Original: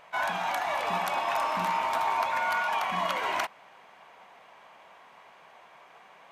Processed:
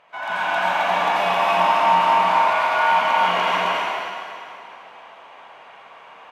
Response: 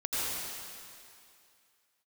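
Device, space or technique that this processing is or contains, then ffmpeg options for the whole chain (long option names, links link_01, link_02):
stadium PA: -filter_complex "[0:a]highpass=frequency=130:poles=1,equalizer=frequency=2900:width_type=o:width=0.44:gain=4,aecho=1:1:198.3|265.3:0.282|0.794[link_01];[1:a]atrim=start_sample=2205[link_02];[link_01][link_02]afir=irnorm=-1:irlink=0,aemphasis=mode=reproduction:type=50kf"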